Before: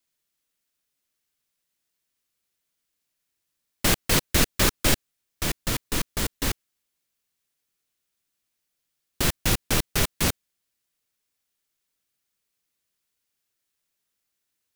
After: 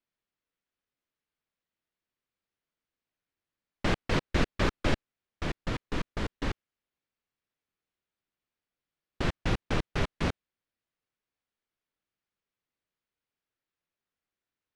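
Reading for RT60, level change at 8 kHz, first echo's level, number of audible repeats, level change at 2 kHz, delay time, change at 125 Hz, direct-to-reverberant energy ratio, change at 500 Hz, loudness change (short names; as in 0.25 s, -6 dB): none, -22.5 dB, none, none, -6.5 dB, none, -3.5 dB, none, -3.0 dB, -8.0 dB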